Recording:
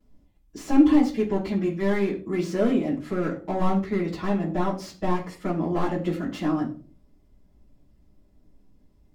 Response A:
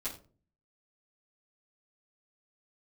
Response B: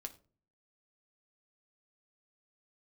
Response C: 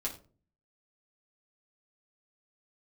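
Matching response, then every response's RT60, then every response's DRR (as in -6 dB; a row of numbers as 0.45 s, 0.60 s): A; 0.40 s, 0.40 s, 0.40 s; -12.5 dB, 5.5 dB, -3.5 dB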